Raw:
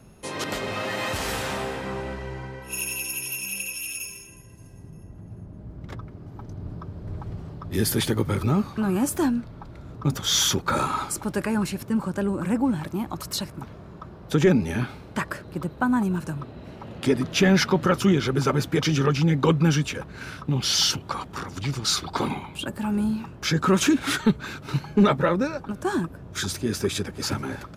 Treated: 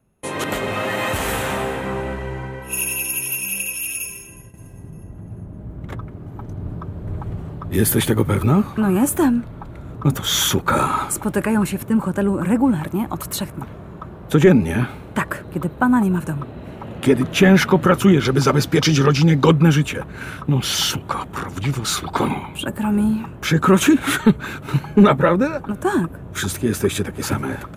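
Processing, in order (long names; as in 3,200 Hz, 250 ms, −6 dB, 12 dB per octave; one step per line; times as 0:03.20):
parametric band 5,000 Hz −11.5 dB 0.7 octaves, from 0:18.25 +2 dB, from 0:19.51 −11.5 dB
noise gate with hold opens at −39 dBFS
high-shelf EQ 10,000 Hz +4 dB
level +6.5 dB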